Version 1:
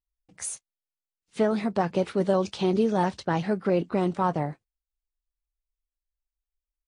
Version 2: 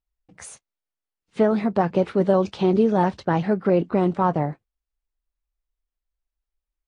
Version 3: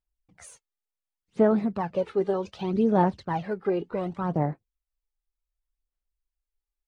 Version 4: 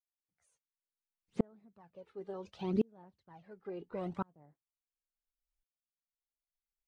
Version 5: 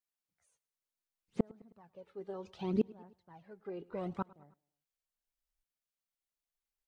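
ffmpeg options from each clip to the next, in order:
ffmpeg -i in.wav -af "lowpass=frequency=1900:poles=1,volume=5dB" out.wav
ffmpeg -i in.wav -af "aphaser=in_gain=1:out_gain=1:delay=2.5:decay=0.6:speed=0.67:type=sinusoidal,volume=-9dB" out.wav
ffmpeg -i in.wav -af "aeval=exprs='val(0)*pow(10,-38*if(lt(mod(-0.71*n/s,1),2*abs(-0.71)/1000),1-mod(-0.71*n/s,1)/(2*abs(-0.71)/1000),(mod(-0.71*n/s,1)-2*abs(-0.71)/1000)/(1-2*abs(-0.71)/1000))/20)':channel_layout=same,volume=-3.5dB" out.wav
ffmpeg -i in.wav -af "aecho=1:1:105|210|315:0.0708|0.0368|0.0191" out.wav

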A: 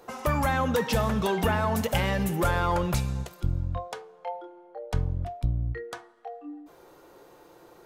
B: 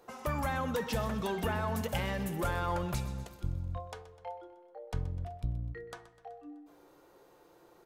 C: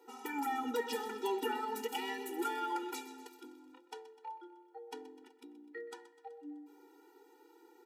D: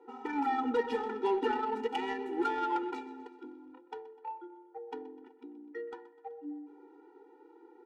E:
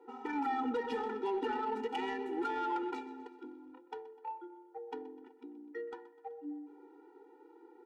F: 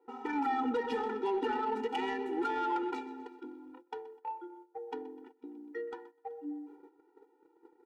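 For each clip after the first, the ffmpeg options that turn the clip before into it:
ffmpeg -i in.wav -af "aecho=1:1:126|252|378|504|630|756:0.168|0.0974|0.0565|0.0328|0.019|0.011,volume=-8dB" out.wav
ffmpeg -i in.wav -af "afftfilt=real='re*eq(mod(floor(b*sr/1024/250),2),1)':imag='im*eq(mod(floor(b*sr/1024/250),2),1)':win_size=1024:overlap=0.75,volume=1dB" out.wav
ffmpeg -i in.wav -af "adynamicsmooth=sensitivity=3:basefreq=1500,volume=6dB" out.wav
ffmpeg -i in.wav -af "alimiter=level_in=2.5dB:limit=-24dB:level=0:latency=1:release=29,volume=-2.5dB,volume=-1dB" out.wav
ffmpeg -i in.wav -af "agate=range=-12dB:threshold=-55dB:ratio=16:detection=peak,volume=2.5dB" out.wav

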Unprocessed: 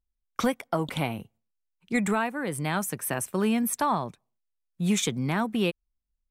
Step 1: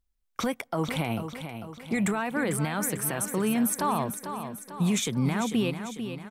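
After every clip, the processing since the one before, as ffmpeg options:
ffmpeg -i in.wav -filter_complex "[0:a]alimiter=limit=-23dB:level=0:latency=1:release=66,asplit=2[link_01][link_02];[link_02]aecho=0:1:446|892|1338|1784|2230|2676:0.355|0.185|0.0959|0.0499|0.0259|0.0135[link_03];[link_01][link_03]amix=inputs=2:normalize=0,volume=4.5dB" out.wav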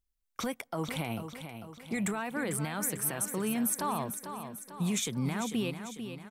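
ffmpeg -i in.wav -af "highshelf=frequency=4400:gain=5,volume=-6dB" out.wav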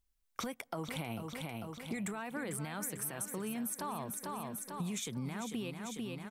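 ffmpeg -i in.wav -af "acompressor=threshold=-40dB:ratio=5,volume=3dB" out.wav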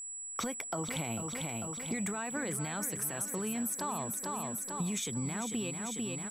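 ffmpeg -i in.wav -af "aeval=exprs='val(0)+0.00708*sin(2*PI*7800*n/s)':channel_layout=same,volume=3dB" out.wav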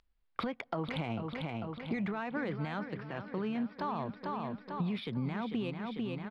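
ffmpeg -i in.wav -af "aresample=11025,aresample=44100,adynamicsmooth=sensitivity=3:basefreq=3200,volume=1.5dB" out.wav

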